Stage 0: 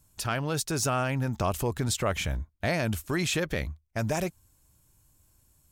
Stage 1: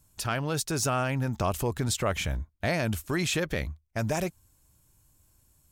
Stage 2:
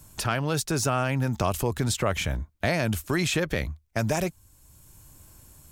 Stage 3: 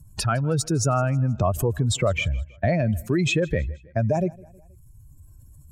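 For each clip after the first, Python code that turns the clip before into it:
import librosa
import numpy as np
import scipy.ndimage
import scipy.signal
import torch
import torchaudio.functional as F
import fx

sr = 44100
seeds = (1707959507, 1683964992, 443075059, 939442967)

y1 = x
y2 = fx.band_squash(y1, sr, depth_pct=40)
y2 = y2 * librosa.db_to_amplitude(2.5)
y3 = fx.spec_expand(y2, sr, power=2.0)
y3 = fx.echo_feedback(y3, sr, ms=159, feedback_pct=50, wet_db=-23.5)
y3 = y3 * librosa.db_to_amplitude(4.0)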